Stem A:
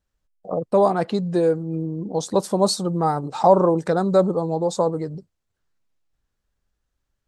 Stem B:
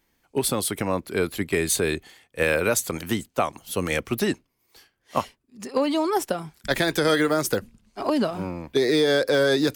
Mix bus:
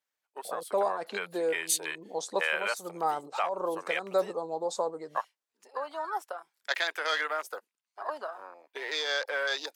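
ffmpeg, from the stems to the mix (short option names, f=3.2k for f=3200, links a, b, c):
-filter_complex "[0:a]alimiter=limit=-8.5dB:level=0:latency=1:release=421,volume=-6dB[a];[1:a]afwtdn=0.0282,highpass=820,volume=-3dB,asplit=2[b][c];[c]apad=whole_len=320802[d];[a][d]sidechaincompress=threshold=-37dB:ratio=8:attack=41:release=198[e];[e][b]amix=inputs=2:normalize=0,highpass=530"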